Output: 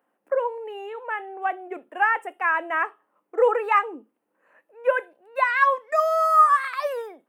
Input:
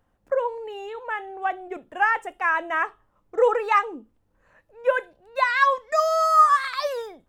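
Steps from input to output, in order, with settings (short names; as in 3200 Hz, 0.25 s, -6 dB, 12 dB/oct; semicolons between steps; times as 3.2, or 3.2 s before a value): HPF 260 Hz 24 dB/oct; band shelf 5000 Hz -10.5 dB 1.3 oct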